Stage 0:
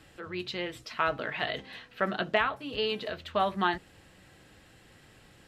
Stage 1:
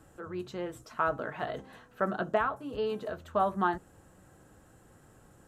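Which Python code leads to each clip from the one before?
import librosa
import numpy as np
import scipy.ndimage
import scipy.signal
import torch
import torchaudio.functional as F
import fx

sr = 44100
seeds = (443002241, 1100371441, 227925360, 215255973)

y = fx.band_shelf(x, sr, hz=3100.0, db=-14.5, octaves=1.7)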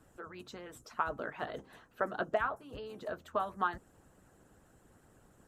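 y = fx.hpss(x, sr, part='harmonic', gain_db=-14)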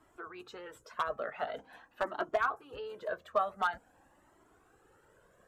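y = fx.bass_treble(x, sr, bass_db=-13, treble_db=-8)
y = np.clip(10.0 ** (23.5 / 20.0) * y, -1.0, 1.0) / 10.0 ** (23.5 / 20.0)
y = fx.comb_cascade(y, sr, direction='rising', hz=0.46)
y = F.gain(torch.from_numpy(y), 7.0).numpy()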